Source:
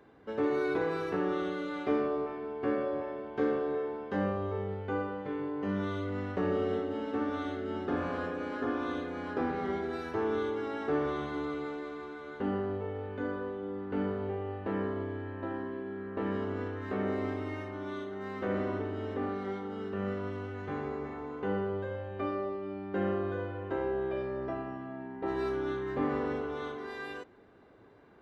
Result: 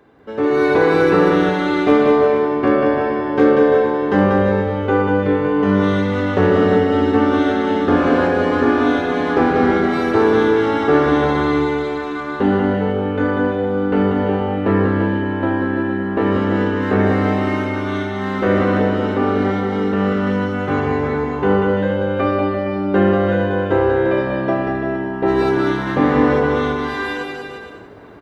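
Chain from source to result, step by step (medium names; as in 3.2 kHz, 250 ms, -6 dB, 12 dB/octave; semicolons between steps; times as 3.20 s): level rider gain up to 10 dB; hard clipper -9.5 dBFS, distortion -41 dB; on a send: bouncing-ball echo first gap 190 ms, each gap 0.8×, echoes 5; on the sum: trim +6.5 dB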